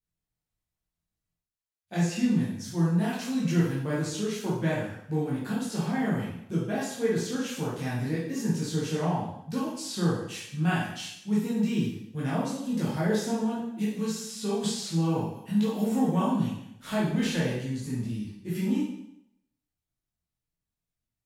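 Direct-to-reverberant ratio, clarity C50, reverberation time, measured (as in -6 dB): -8.0 dB, 1.0 dB, 0.75 s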